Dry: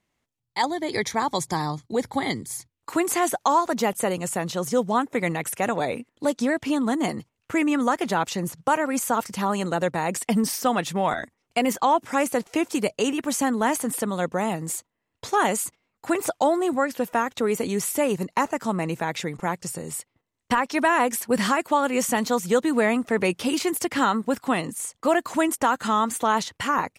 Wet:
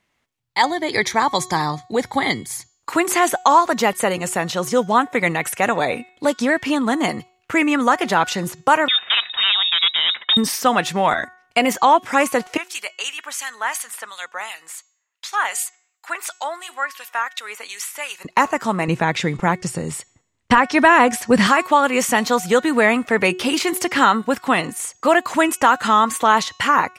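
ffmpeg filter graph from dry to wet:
-filter_complex "[0:a]asettb=1/sr,asplit=3[s0][s1][s2];[s0]atrim=end=8.884[s3];[s1]atrim=start=8.88:end=10.37,asetpts=PTS-STARTPTS,afade=t=in:d=0.004:c=qsin,afade=t=out:st=1.486:d=0.004:c=qsin,aeval=exprs='0.126*(abs(mod(val(0)/0.126+3,4)-2)-1)':c=same,lowpass=f=3300:t=q:w=0.5098,lowpass=f=3300:t=q:w=0.6013,lowpass=f=3300:t=q:w=0.9,lowpass=f=3300:t=q:w=2.563,afreqshift=-3900[s4];[s2]atrim=start=10.366[s5];[s3][s4]acrossfade=d=0.004:c1=hsin:c2=qsin[s6];[s6][s5]acrossfade=d=0.004:c1=qsin:c2=hsin,asettb=1/sr,asplit=3[s7][s8][s9];[s7]atrim=end=12.574[s10];[s8]atrim=start=12.57:end=18.25,asetpts=PTS-STARTPTS,afade=t=in:d=0.004:c=qsin,afade=t=out:st=5.676:d=0.004:c=qsin,highpass=1300,acrossover=split=2000[s11][s12];[s11]aeval=exprs='val(0)*(1-0.7/2+0.7/2*cos(2*PI*2.8*n/s))':c=same[s13];[s12]aeval=exprs='val(0)*(1-0.7/2-0.7/2*cos(2*PI*2.8*n/s))':c=same[s14];[s13][s14]amix=inputs=2:normalize=0[s15];[s9]atrim=start=18.246[s16];[s10][s15]acrossfade=d=0.004:c1=hsin:c2=qsin[s17];[s17][s16]acrossfade=d=0.004:c1=qsin:c2=hsin,asettb=1/sr,asplit=3[s18][s19][s20];[s18]atrim=end=18.884[s21];[s19]atrim=start=18.88:end=21.47,asetpts=PTS-STARTPTS,afade=t=in:d=0.004:c=qsin,afade=t=out:st=2.586:d=0.004:c=qsin,lowpass=9400,lowshelf=f=260:g=10.5[s22];[s20]atrim=start=21.466[s23];[s21][s22]acrossfade=d=0.004:c1=hsin:c2=qsin[s24];[s24][s23]acrossfade=d=0.004:c1=qsin:c2=hsin,equalizer=f=2000:w=0.41:g=7,bandreject=f=367.2:t=h:w=4,bandreject=f=734.4:t=h:w=4,bandreject=f=1101.6:t=h:w=4,bandreject=f=1468.8:t=h:w=4,bandreject=f=1836:t=h:w=4,bandreject=f=2203.2:t=h:w=4,bandreject=f=2570.4:t=h:w=4,bandreject=f=2937.6:t=h:w=4,bandreject=f=3304.8:t=h:w=4,bandreject=f=3672:t=h:w=4,bandreject=f=4039.2:t=h:w=4,bandreject=f=4406.4:t=h:w=4,bandreject=f=4773.6:t=h:w=4,bandreject=f=5140.8:t=h:w=4,bandreject=f=5508:t=h:w=4,bandreject=f=5875.2:t=h:w=4,bandreject=f=6242.4:t=h:w=4,bandreject=f=6609.6:t=h:w=4,bandreject=f=6976.8:t=h:w=4,bandreject=f=7344:t=h:w=4,bandreject=f=7711.2:t=h:w=4,volume=1.33"

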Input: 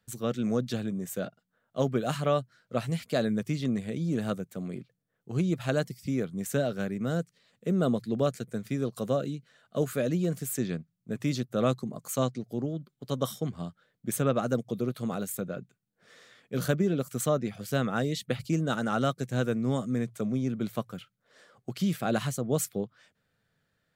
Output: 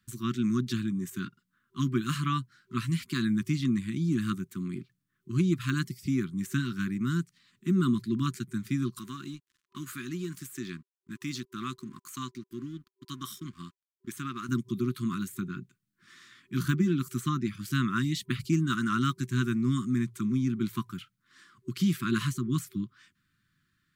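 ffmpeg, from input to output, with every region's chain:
-filter_complex "[0:a]asettb=1/sr,asplit=3[s0][s1][s2];[s0]atrim=end=8.994[s3];[s1]atrim=start=8.99:end=14.49,asetpts=PTS-STARTPTS,afade=t=in:d=0.004:c=qsin,afade=t=out:st=5.496:d=0.004:c=qsin,lowshelf=f=270:g=-11,acompressor=threshold=0.0178:ratio=1.5:attack=3.2:release=140:knee=1:detection=peak,aeval=exprs='sgn(val(0))*max(abs(val(0))-0.00133,0)':c=same[s4];[s2]atrim=start=14.486[s5];[s3][s4]acrossfade=d=0.004:c1=hsin:c2=qsin[s6];[s6][s5]acrossfade=d=0.004:c1=qsin:c2=hsin,afftfilt=real='re*(1-between(b*sr/4096,380,1000))':imag='im*(1-between(b*sr/4096,380,1000))':win_size=4096:overlap=0.75,deesser=0.8,volume=1.26"

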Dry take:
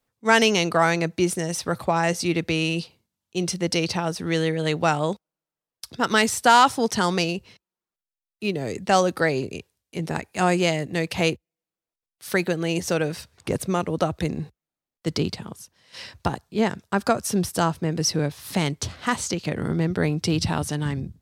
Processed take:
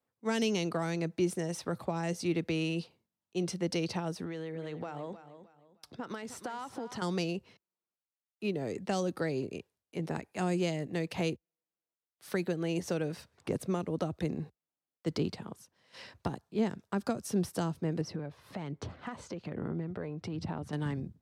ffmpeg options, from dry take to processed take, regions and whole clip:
-filter_complex "[0:a]asettb=1/sr,asplit=3[s0][s1][s2];[s0]atrim=end=4.244[s3];[s1]atrim=start=4.24:end=7.02,asetpts=PTS-STARTPTS,afade=t=in:d=0.004:c=qsin,afade=t=out:st=2.776:d=0.004:c=qsin,highshelf=f=5800:g=-6.5,acompressor=threshold=0.0398:ratio=12:attack=3.2:release=140:knee=1:detection=peak,aecho=1:1:309|618|927:0.237|0.0711|0.0213,atrim=end_sample=122598[s4];[s2]atrim=start=7.016[s5];[s3][s4]acrossfade=d=0.004:c1=hsin:c2=qsin[s6];[s6][s5]acrossfade=d=0.004:c1=qsin:c2=hsin,asettb=1/sr,asplit=3[s7][s8][s9];[s7]atrim=end=18.014[s10];[s8]atrim=start=18.01:end=20.73,asetpts=PTS-STARTPTS,afade=t=in:d=0.004:c=qsin,afade=t=out:st=2.716:d=0.004:c=qsin,lowpass=f=1800:p=1,acompressor=threshold=0.0398:ratio=4:attack=3.2:release=140:knee=1:detection=peak,aphaser=in_gain=1:out_gain=1:delay=2:decay=0.32:speed=1.2:type=sinusoidal[s11];[s9]atrim=start=20.726[s12];[s10][s11]acrossfade=d=0.004:c1=hsin:c2=qsin[s13];[s13][s12]acrossfade=d=0.004:c1=qsin:c2=hsin,acrossover=split=370|3000[s14][s15][s16];[s15]acompressor=threshold=0.0316:ratio=6[s17];[s14][s17][s16]amix=inputs=3:normalize=0,highpass=f=190:p=1,highshelf=f=2000:g=-10,volume=0.631"

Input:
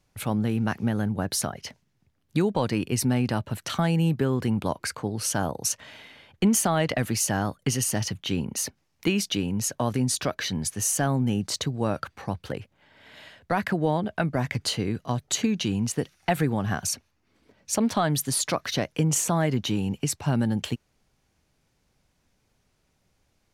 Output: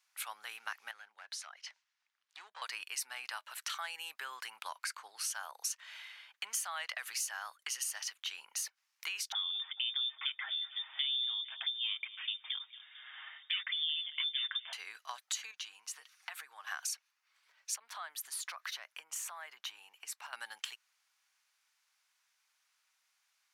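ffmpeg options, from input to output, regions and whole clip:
-filter_complex "[0:a]asettb=1/sr,asplit=3[s0][s1][s2];[s0]atrim=end=0.914[s3];[s1]atrim=start=0.91:end=2.62,asetpts=PTS-STARTPTS,afade=t=in:d=0.004:c=qsin,afade=t=out:st=1.706:d=0.004:c=qsin,acompressor=threshold=0.00355:ratio=1.5:attack=3.2:release=140:knee=1:detection=peak,volume=28.2,asoftclip=hard,volume=0.0355,highpass=130,lowpass=6400[s4];[s2]atrim=start=2.616[s5];[s3][s4]acrossfade=d=0.004:c1=hsin:c2=qsin[s6];[s6][s5]acrossfade=d=0.004:c1=qsin:c2=hsin,asettb=1/sr,asplit=3[s7][s8][s9];[s7]atrim=end=9.324[s10];[s8]atrim=start=9.32:end=14.73,asetpts=PTS-STARTPTS,afade=t=in:d=0.004:c=qsin,afade=t=out:st=5.406:d=0.004:c=qsin,aecho=1:1:6.9:0.62,atrim=end_sample=238581,aecho=1:1:224|448|672|896:0.0794|0.0461|0.0267|0.0155,atrim=end_sample=238581,lowpass=f=3100:t=q:w=0.5098,lowpass=f=3100:t=q:w=0.6013,lowpass=f=3100:t=q:w=0.9,lowpass=f=3100:t=q:w=2.563,afreqshift=-3700[s11];[s9]atrim=start=14.726[s12];[s10][s11]acrossfade=d=0.004:c1=hsin:c2=qsin[s13];[s13][s12]acrossfade=d=0.004:c1=qsin:c2=hsin,asettb=1/sr,asplit=3[s14][s15][s16];[s14]atrim=end=15.514[s17];[s15]atrim=start=15.51:end=16.67,asetpts=PTS-STARTPTS,afade=t=in:d=0.004:c=qsin,afade=t=out:st=1.156:d=0.004:c=qsin,equalizer=f=1100:t=o:w=0.24:g=4,aecho=1:1:6.5:0.35,atrim=end_sample=51156,acompressor=threshold=0.0158:ratio=3:attack=3.2:release=140:knee=1:detection=peak[s18];[s16]atrim=start=16.666[s19];[s17][s18]acrossfade=d=0.004:c1=hsin:c2=qsin[s20];[s20][s19]acrossfade=d=0.004:c1=qsin:c2=hsin,asettb=1/sr,asplit=3[s21][s22][s23];[s21]atrim=end=17.764[s24];[s22]atrim=start=17.76:end=20.33,asetpts=PTS-STARTPTS,afade=t=in:d=0.004:c=qsin,afade=t=out:st=2.566:d=0.004:c=qsin,equalizer=f=5700:t=o:w=2.4:g=-7.5,acompressor=threshold=0.0251:ratio=2.5:attack=3.2:release=140:knee=1:detection=peak[s25];[s23]atrim=start=20.326[s26];[s24][s25]acrossfade=d=0.004:c1=hsin:c2=qsin[s27];[s27][s26]acrossfade=d=0.004:c1=qsin:c2=hsin,highpass=f=1100:w=0.5412,highpass=f=1100:w=1.3066,acompressor=threshold=0.0141:ratio=2.5,volume=0.841"

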